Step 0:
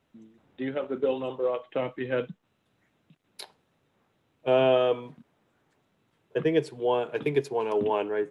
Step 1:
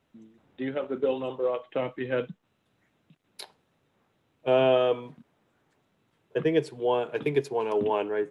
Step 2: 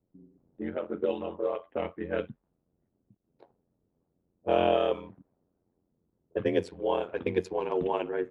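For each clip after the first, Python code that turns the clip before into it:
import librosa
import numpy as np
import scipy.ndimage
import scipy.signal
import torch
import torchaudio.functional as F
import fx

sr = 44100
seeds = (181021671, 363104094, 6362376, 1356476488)

y1 = x
y2 = y1 * np.sin(2.0 * np.pi * 44.0 * np.arange(len(y1)) / sr)
y2 = fx.env_lowpass(y2, sr, base_hz=430.0, full_db=-22.5)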